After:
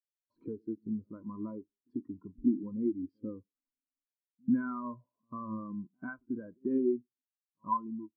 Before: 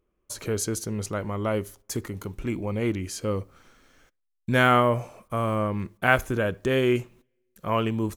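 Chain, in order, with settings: fade out at the end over 0.71 s; in parallel at -9.5 dB: bit crusher 7-bit; on the sum: compression 6:1, threshold -31 dBFS, peak gain reduction 18.5 dB; small resonant body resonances 270/990 Hz, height 13 dB, ringing for 25 ms; reverse echo 93 ms -16.5 dB; dynamic bell 1.5 kHz, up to +4 dB, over -43 dBFS, Q 1.3; steep low-pass 5 kHz; on a send at -16.5 dB: reverberation RT60 0.45 s, pre-delay 37 ms; on the sum: spectral contrast expander 2.5:1; trim -6 dB

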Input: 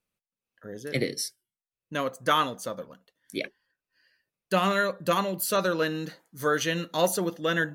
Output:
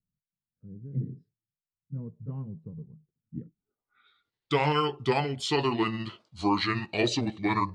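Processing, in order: pitch bend over the whole clip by -8 st starting unshifted; low-pass sweep 150 Hz -> 4.1 kHz, 3.54–4.09 s

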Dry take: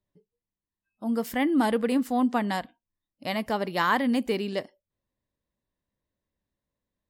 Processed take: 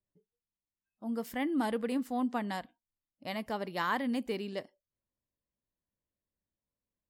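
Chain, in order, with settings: tape noise reduction on one side only decoder only; trim -8 dB

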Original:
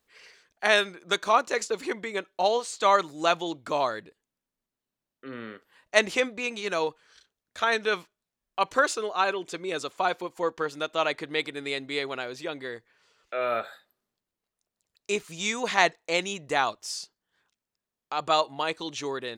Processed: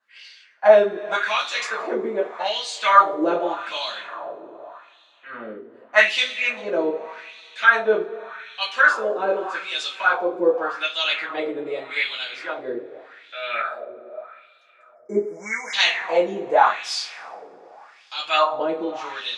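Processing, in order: two-slope reverb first 0.27 s, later 3.8 s, from -22 dB, DRR -8.5 dB; spectral selection erased 14.95–15.74 s, 2.3–5 kHz; wah-wah 0.84 Hz 370–3700 Hz, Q 2.6; trim +5 dB

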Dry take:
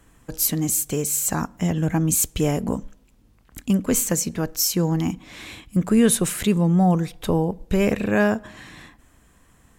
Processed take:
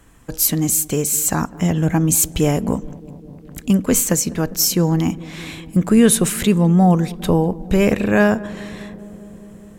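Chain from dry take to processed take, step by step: filtered feedback delay 203 ms, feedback 84%, low-pass 1.2 kHz, level -20 dB; trim +4.5 dB

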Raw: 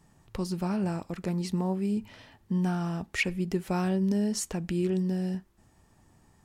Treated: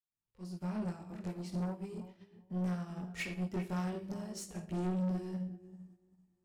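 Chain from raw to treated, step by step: fade-in on the opening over 0.79 s; chorus voices 2, 0.42 Hz, delay 20 ms, depth 3.4 ms; filtered feedback delay 390 ms, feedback 47%, low-pass 980 Hz, level -9 dB; Schroeder reverb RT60 0.48 s, DRR 7 dB; saturation -30.5 dBFS, distortion -10 dB; upward expansion 2.5:1, over -48 dBFS

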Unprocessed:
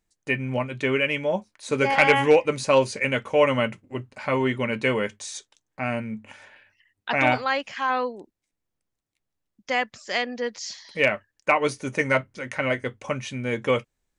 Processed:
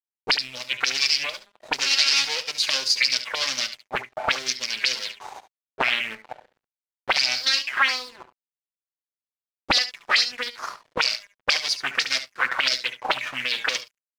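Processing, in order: comb filter that takes the minimum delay 8 ms; de-hum 202.9 Hz, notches 14; dynamic bell 940 Hz, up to -6 dB, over -36 dBFS, Q 0.99; in parallel at +0.5 dB: level held to a coarse grid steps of 9 dB; on the sum: waveshaping leveller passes 1; auto-wah 350–5000 Hz, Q 5.9, up, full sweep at -16.5 dBFS; crossover distortion -59 dBFS; on a send: delay 71 ms -13 dB; on the sum: loudness maximiser +21.5 dB; loudspeaker Doppler distortion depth 0.65 ms; trim -6.5 dB

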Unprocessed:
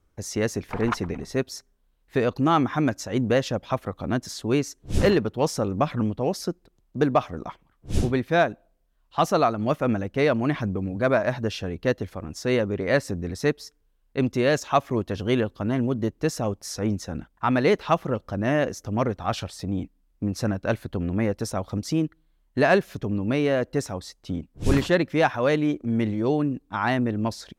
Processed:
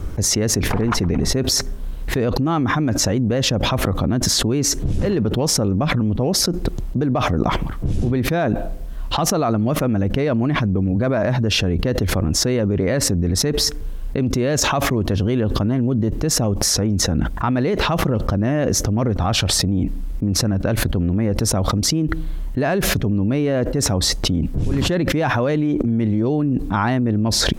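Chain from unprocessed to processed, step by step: in parallel at -0.5 dB: peak limiter -16.5 dBFS, peak gain reduction 9.5 dB; on the sum: bass shelf 400 Hz +10.5 dB; level flattener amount 100%; trim -15 dB

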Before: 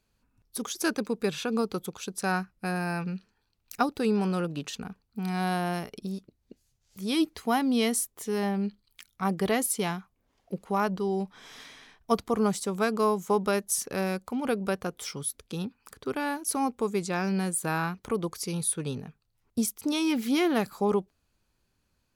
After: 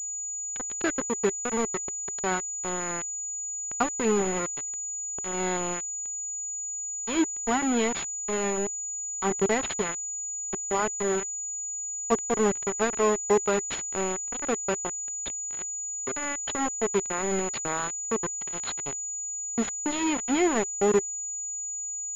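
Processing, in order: small samples zeroed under -25 dBFS; small resonant body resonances 390/2000 Hz, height 7 dB, ringing for 45 ms; class-D stage that switches slowly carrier 6.9 kHz

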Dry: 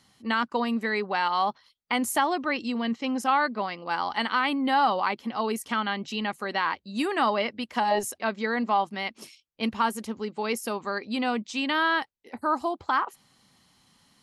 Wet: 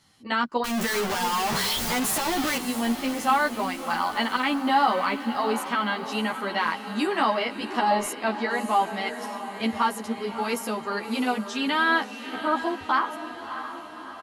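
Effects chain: 0.64–2.57 s: one-bit comparator; echo that smears into a reverb 631 ms, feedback 57%, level -10 dB; endless flanger 11.5 ms +2.9 Hz; trim +4 dB

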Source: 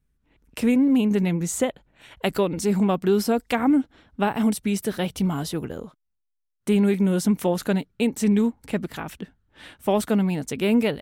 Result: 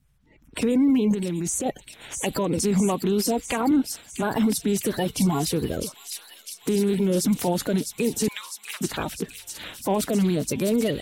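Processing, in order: coarse spectral quantiser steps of 30 dB; 8.28–8.81 s: steep high-pass 1 kHz 48 dB/octave; dynamic bell 1.5 kHz, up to -4 dB, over -40 dBFS, Q 0.8; peak limiter -20.5 dBFS, peak gain reduction 10 dB; 1.14–1.66 s: level held to a coarse grid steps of 11 dB; feedback echo behind a high-pass 654 ms, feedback 74%, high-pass 3.2 kHz, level -5 dB; 3.71–4.23 s: three bands expanded up and down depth 40%; trim +6 dB

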